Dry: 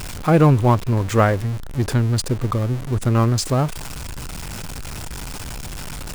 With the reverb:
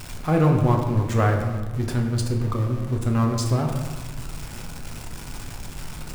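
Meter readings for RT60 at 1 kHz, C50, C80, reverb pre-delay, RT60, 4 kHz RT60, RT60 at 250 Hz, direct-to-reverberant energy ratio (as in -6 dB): 1.4 s, 5.0 dB, 6.5 dB, 4 ms, 1.4 s, 0.75 s, 1.8 s, 1.5 dB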